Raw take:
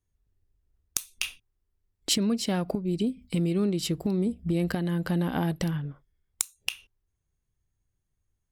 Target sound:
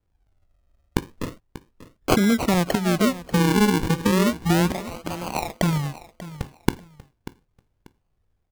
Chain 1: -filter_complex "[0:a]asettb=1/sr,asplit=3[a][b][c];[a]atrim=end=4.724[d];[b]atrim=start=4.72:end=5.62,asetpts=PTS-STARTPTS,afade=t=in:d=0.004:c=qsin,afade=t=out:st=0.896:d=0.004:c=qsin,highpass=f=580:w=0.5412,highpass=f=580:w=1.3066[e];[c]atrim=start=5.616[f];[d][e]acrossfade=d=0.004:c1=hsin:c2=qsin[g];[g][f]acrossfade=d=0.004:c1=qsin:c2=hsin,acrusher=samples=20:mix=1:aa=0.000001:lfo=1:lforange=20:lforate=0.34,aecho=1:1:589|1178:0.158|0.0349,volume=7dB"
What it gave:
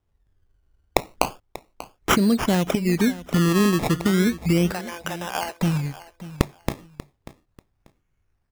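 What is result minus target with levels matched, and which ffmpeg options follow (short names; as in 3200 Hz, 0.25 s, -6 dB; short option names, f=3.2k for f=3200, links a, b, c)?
decimation with a swept rate: distortion -7 dB
-filter_complex "[0:a]asettb=1/sr,asplit=3[a][b][c];[a]atrim=end=4.724[d];[b]atrim=start=4.72:end=5.62,asetpts=PTS-STARTPTS,afade=t=in:d=0.004:c=qsin,afade=t=out:st=0.896:d=0.004:c=qsin,highpass=f=580:w=0.5412,highpass=f=580:w=1.3066[e];[c]atrim=start=5.616[f];[d][e]acrossfade=d=0.004:c1=hsin:c2=qsin[g];[g][f]acrossfade=d=0.004:c1=qsin:c2=hsin,acrusher=samples=47:mix=1:aa=0.000001:lfo=1:lforange=47:lforate=0.34,aecho=1:1:589|1178:0.158|0.0349,volume=7dB"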